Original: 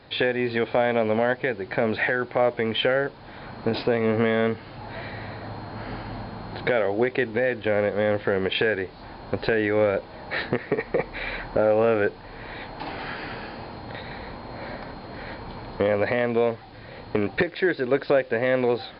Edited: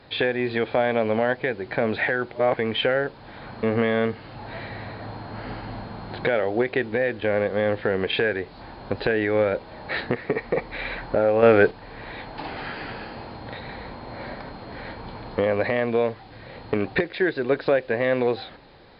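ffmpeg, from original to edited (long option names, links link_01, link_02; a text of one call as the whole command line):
ffmpeg -i in.wav -filter_complex "[0:a]asplit=6[link_01][link_02][link_03][link_04][link_05][link_06];[link_01]atrim=end=2.322[link_07];[link_02]atrim=start=2.318:end=2.572,asetpts=PTS-STARTPTS,areverse[link_08];[link_03]atrim=start=2.568:end=3.632[link_09];[link_04]atrim=start=4.048:end=11.852[link_10];[link_05]atrim=start=11.848:end=12.132,asetpts=PTS-STARTPTS,volume=6.5dB[link_11];[link_06]atrim=start=12.128[link_12];[link_07][link_08]acrossfade=duration=0.004:curve1=hsin:curve2=hsin[link_13];[link_13][link_09]acrossfade=duration=0.004:curve1=hsin:curve2=hsin[link_14];[link_14][link_10]acrossfade=duration=0.004:curve1=hsin:curve2=hsin[link_15];[link_15][link_11]acrossfade=duration=0.004:curve1=hsin:curve2=hsin[link_16];[link_16][link_12]acrossfade=duration=0.004:curve1=hsin:curve2=hsin" out.wav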